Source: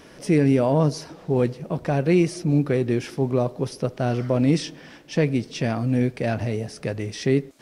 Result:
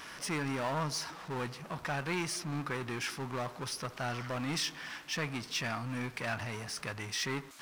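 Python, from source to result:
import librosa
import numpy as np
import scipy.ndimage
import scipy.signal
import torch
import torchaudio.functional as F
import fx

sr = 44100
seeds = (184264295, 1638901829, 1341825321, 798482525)

y = fx.power_curve(x, sr, exponent=0.7)
y = fx.low_shelf_res(y, sr, hz=740.0, db=-11.5, q=1.5)
y = y * 10.0 ** (-7.5 / 20.0)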